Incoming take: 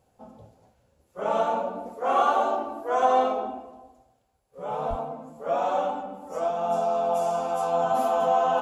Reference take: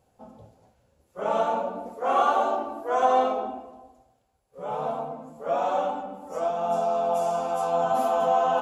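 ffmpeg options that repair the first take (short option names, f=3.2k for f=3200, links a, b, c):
-filter_complex "[0:a]asplit=3[a][b][c];[a]afade=t=out:st=4.89:d=0.02[d];[b]highpass=f=140:w=0.5412,highpass=f=140:w=1.3066,afade=t=in:st=4.89:d=0.02,afade=t=out:st=5.01:d=0.02[e];[c]afade=t=in:st=5.01:d=0.02[f];[d][e][f]amix=inputs=3:normalize=0"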